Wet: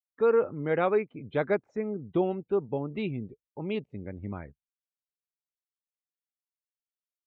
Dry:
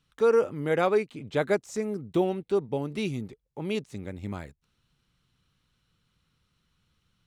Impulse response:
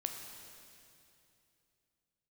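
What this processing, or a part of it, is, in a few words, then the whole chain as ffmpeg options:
hearing-loss simulation: -af "lowpass=3k,agate=range=-33dB:threshold=-52dB:ratio=3:detection=peak,afftdn=nr=26:nf=-48,volume=-1.5dB"

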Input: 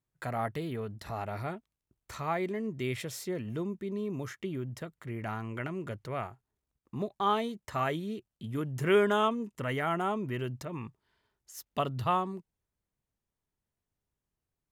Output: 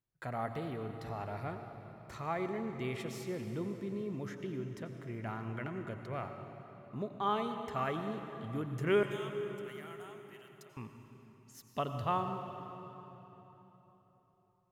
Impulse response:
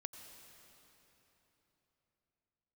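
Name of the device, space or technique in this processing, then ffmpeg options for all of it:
swimming-pool hall: -filter_complex "[0:a]asettb=1/sr,asplit=3[a][b][c];[a]atrim=end=9.034[d];[b]atrim=start=9.03:end=10.77,asetpts=PTS-STARTPTS,afade=t=in:d=0.004:c=qsin,afade=t=out:st=1.736:d=0.004:c=qsin,aderivative[e];[c]atrim=start=10.766[f];[d][e]acrossfade=d=0.004:c1=hsin:c2=qsin[g];[g][f]acrossfade=d=0.004:c1=qsin:c2=hsin[h];[1:a]atrim=start_sample=2205[i];[h][i]afir=irnorm=-1:irlink=0,highshelf=f=5.3k:g=-7.5"

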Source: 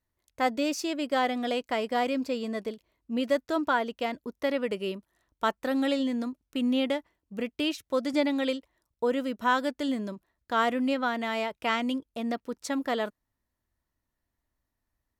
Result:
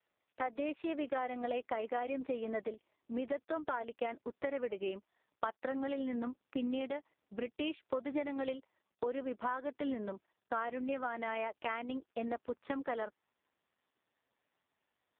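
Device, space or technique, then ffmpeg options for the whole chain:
voicemail: -af "highpass=370,lowpass=2.7k,lowshelf=f=270:g=2.5,acompressor=threshold=-33dB:ratio=10,volume=1dB" -ar 8000 -c:a libopencore_amrnb -b:a 4750

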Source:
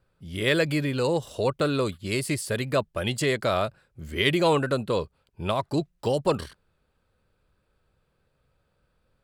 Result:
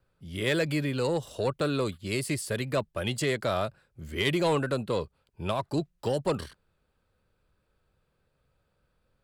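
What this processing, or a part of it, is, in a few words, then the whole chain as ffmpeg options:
one-band saturation: -filter_complex "[0:a]acrossover=split=220|4800[a][b][c];[b]asoftclip=type=tanh:threshold=-16.5dB[d];[a][d][c]amix=inputs=3:normalize=0,volume=-2.5dB"

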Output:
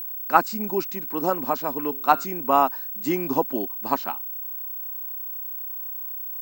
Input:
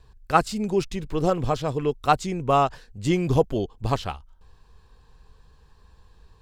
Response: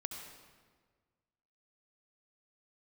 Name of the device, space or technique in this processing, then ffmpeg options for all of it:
old television with a line whistle: -filter_complex "[0:a]asettb=1/sr,asplit=3[a][b][c];[a]atrim=end=1.834[d];[b]atrim=start=1.83:end=2.25,asetpts=PTS-STARTPTS,afade=t=in:d=0.004:c=qsin,afade=t=out:st=0.416:d=0.004:c=qsin,bandreject=f=139:t=h:w=4,bandreject=f=278:t=h:w=4,bandreject=f=417:t=h:w=4,bandreject=f=556:t=h:w=4,bandreject=f=695:t=h:w=4,bandreject=f=834:t=h:w=4,bandreject=f=973:t=h:w=4,bandreject=f=1.112k:t=h:w=4,bandreject=f=1.251k:t=h:w=4,bandreject=f=1.39k:t=h:w=4,bandreject=f=1.529k:t=h:w=4,bandreject=f=1.668k:t=h:w=4,bandreject=f=1.807k:t=h:w=4,bandreject=f=1.946k:t=h:w=4,bandreject=f=2.085k:t=h:w=4,bandreject=f=2.224k:t=h:w=4,bandreject=f=2.363k:t=h:w=4,bandreject=f=2.502k:t=h:w=4,bandreject=f=2.641k:t=h:w=4,bandreject=f=2.78k:t=h:w=4,bandreject=f=2.919k:t=h:w=4,bandreject=f=3.058k:t=h:w=4,bandreject=f=3.197k:t=h:w=4,bandreject=f=3.336k:t=h:w=4,bandreject=f=3.475k:t=h:w=4,bandreject=f=3.614k:t=h:w=4,bandreject=f=3.753k:t=h:w=4,bandreject=f=3.892k:t=h:w=4,bandreject=f=4.031k:t=h:w=4,bandreject=f=4.17k:t=h:w=4,bandreject=f=4.309k:t=h:w=4[e];[c]atrim=start=2.246[f];[d][e]acrossfade=d=0.004:c1=hsin:c2=qsin[g];[g][f]acrossfade=d=0.004:c1=qsin:c2=hsin,highpass=f=220:w=0.5412,highpass=f=220:w=1.3066,equalizer=f=260:t=q:w=4:g=6,equalizer=f=460:t=q:w=4:g=-6,equalizer=f=940:t=q:w=4:g=8,equalizer=f=1.5k:t=q:w=4:g=4,equalizer=f=3.3k:t=q:w=4:g=-10,lowpass=f=8.4k:w=0.5412,lowpass=f=8.4k:w=1.3066,aeval=exprs='val(0)+0.0355*sin(2*PI*15734*n/s)':c=same,volume=-1dB"

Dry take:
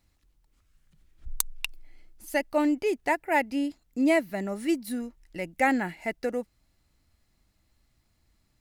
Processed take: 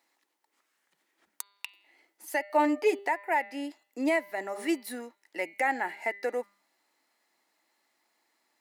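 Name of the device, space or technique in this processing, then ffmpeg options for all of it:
laptop speaker: -filter_complex "[0:a]highpass=f=320:w=0.5412,highpass=f=320:w=1.3066,equalizer=f=890:t=o:w=0.54:g=8,equalizer=f=1.9k:t=o:w=0.41:g=6.5,bandreject=f=200.6:t=h:w=4,bandreject=f=401.2:t=h:w=4,bandreject=f=601.8:t=h:w=4,bandreject=f=802.4:t=h:w=4,bandreject=f=1.003k:t=h:w=4,bandreject=f=1.2036k:t=h:w=4,bandreject=f=1.4042k:t=h:w=4,bandreject=f=1.6048k:t=h:w=4,bandreject=f=1.8054k:t=h:w=4,bandreject=f=2.006k:t=h:w=4,bandreject=f=2.2066k:t=h:w=4,bandreject=f=2.4072k:t=h:w=4,bandreject=f=2.6078k:t=h:w=4,bandreject=f=2.8084k:t=h:w=4,bandreject=f=3.009k:t=h:w=4,bandreject=f=3.2096k:t=h:w=4,bandreject=f=3.4102k:t=h:w=4,bandreject=f=3.6108k:t=h:w=4,bandreject=f=3.8114k:t=h:w=4,bandreject=f=4.012k:t=h:w=4,bandreject=f=4.2126k:t=h:w=4,bandreject=f=4.4132k:t=h:w=4,bandreject=f=4.6138k:t=h:w=4,alimiter=limit=-17.5dB:level=0:latency=1:release=397,asettb=1/sr,asplit=3[a][b][c];[a]atrim=end=2.494[d];[b]atrim=start=2.49:end=2.99,asetpts=PTS-STARTPTS,afade=t=in:d=0.004:c=qsin,afade=t=out:st=0.496:d=0.004:c=qsin,aecho=1:1:6.7:0.75,atrim=end_sample=22050[e];[c]atrim=start=2.986[f];[d][e]acrossfade=d=0.004:c1=hsin:c2=qsin[g];[g][f]acrossfade=d=0.004:c1=qsin:c2=hsin"

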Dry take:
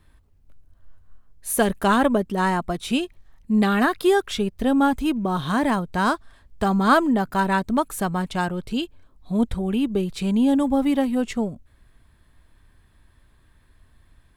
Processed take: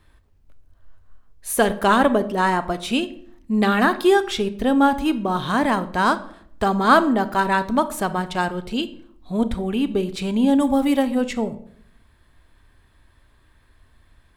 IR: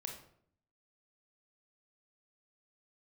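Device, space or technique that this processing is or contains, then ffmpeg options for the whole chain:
filtered reverb send: -filter_complex "[0:a]asplit=2[a][b];[b]highpass=f=160:w=0.5412,highpass=f=160:w=1.3066,lowpass=8.1k[c];[1:a]atrim=start_sample=2205[d];[c][d]afir=irnorm=-1:irlink=0,volume=-3.5dB[e];[a][e]amix=inputs=2:normalize=0,asettb=1/sr,asplit=3[f][g][h];[f]atrim=end=10.604[i];[g]atrim=start=10.6:end=11.03,asetpts=PTS-STARTPTS,afade=t=in:d=0.004:c=qsin,afade=t=out:st=0.426:d=0.004:c=qsin,highshelf=f=6.6k:g=9[j];[h]atrim=start=11.026[k];[i][j]acrossfade=d=0.004:c1=hsin:c2=qsin[l];[l][k]acrossfade=d=0.004:c1=qsin:c2=hsin"

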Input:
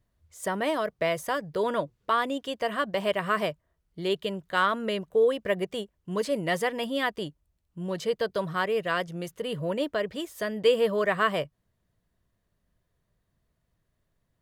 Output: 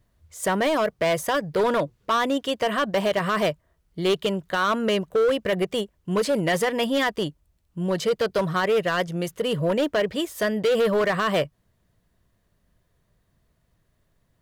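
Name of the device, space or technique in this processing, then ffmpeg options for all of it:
limiter into clipper: -af "alimiter=limit=-19dB:level=0:latency=1:release=21,asoftclip=type=hard:threshold=-24.5dB,volume=7.5dB"

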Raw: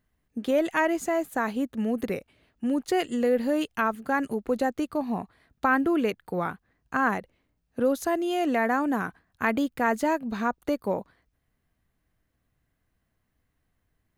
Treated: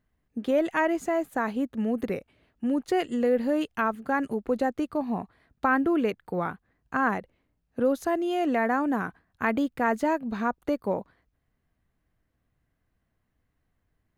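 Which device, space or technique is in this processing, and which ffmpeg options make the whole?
behind a face mask: -af "highshelf=f=3.5k:g=-7.5"

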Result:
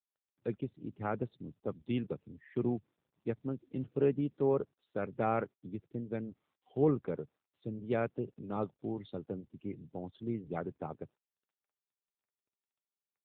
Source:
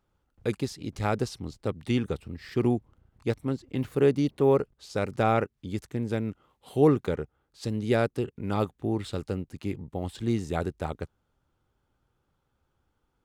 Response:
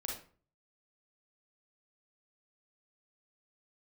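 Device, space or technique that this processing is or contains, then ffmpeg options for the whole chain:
mobile call with aggressive noise cancelling: -af "highpass=f=110:w=0.5412,highpass=f=110:w=1.3066,afftdn=nr=21:nf=-42,volume=-7dB" -ar 8000 -c:a libopencore_amrnb -b:a 7950

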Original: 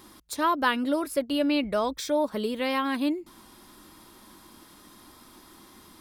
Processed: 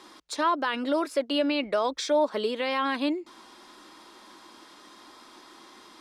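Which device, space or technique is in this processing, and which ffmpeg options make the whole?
DJ mixer with the lows and highs turned down: -filter_complex "[0:a]acrossover=split=290 7600:gain=0.1 1 0.0631[a][b][c];[a][b][c]amix=inputs=3:normalize=0,alimiter=limit=-20.5dB:level=0:latency=1:release=24,volume=4dB"

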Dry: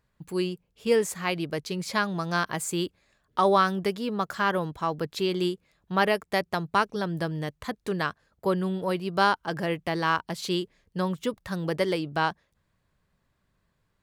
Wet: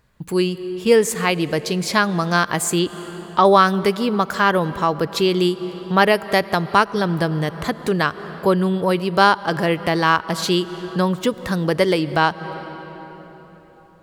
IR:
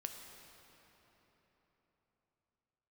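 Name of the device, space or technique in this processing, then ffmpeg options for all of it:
ducked reverb: -filter_complex "[0:a]asettb=1/sr,asplit=3[a][b][c];[a]atrim=end=2.794[d];[b]atrim=start=2.79:end=3.45,asetpts=PTS-STARTPTS,afade=t=in:d=0.004:c=qsin,afade=t=out:st=0.656:d=0.004:c=qsin,lowpass=f=5.5k:w=0.5412,lowpass=f=5.5k:w=1.3066[e];[c]atrim=start=3.446[f];[d][e]acrossfade=d=0.004:c1=hsin:c2=qsin[g];[g][f]acrossfade=d=0.004:c1=qsin:c2=hsin,asplit=3[h][i][j];[1:a]atrim=start_sample=2205[k];[i][k]afir=irnorm=-1:irlink=0[l];[j]apad=whole_len=618354[m];[l][m]sidechaincompress=threshold=-33dB:ratio=6:attack=10:release=209,volume=-1dB[n];[h][n]amix=inputs=2:normalize=0,volume=7.5dB"

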